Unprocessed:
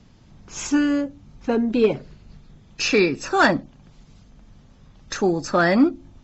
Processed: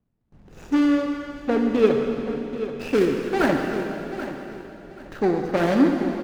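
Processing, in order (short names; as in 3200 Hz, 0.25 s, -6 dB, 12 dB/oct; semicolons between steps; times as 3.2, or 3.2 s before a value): median filter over 41 samples; low shelf 360 Hz -6.5 dB; gate with hold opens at -46 dBFS; high shelf 5200 Hz -7.5 dB; feedback echo 0.783 s, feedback 25%, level -12 dB; reverb RT60 3.0 s, pre-delay 35 ms, DRR 3 dB; gain +3 dB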